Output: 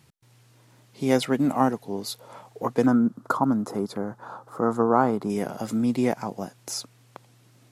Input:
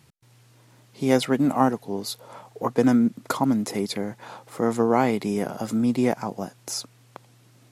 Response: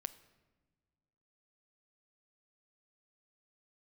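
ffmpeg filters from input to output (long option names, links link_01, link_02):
-filter_complex "[0:a]asettb=1/sr,asplit=3[link_01][link_02][link_03];[link_01]atrim=end=2.864[link_04];[link_02]atrim=start=2.86:end=5.3,asetpts=PTS-STARTPTS,afade=type=in:duration=0.004:curve=qsin,afade=type=out:start_time=2.436:duration=0.004:curve=qsin,highshelf=frequency=1700:width_type=q:width=3:gain=-8.5[link_05];[link_03]atrim=start=5.296[link_06];[link_04][link_05]acrossfade=duration=0.004:curve1=hsin:curve2=qsin[link_07];[link_07][link_06]acrossfade=duration=0.004:curve1=qsin:curve2=hsin,volume=-1.5dB"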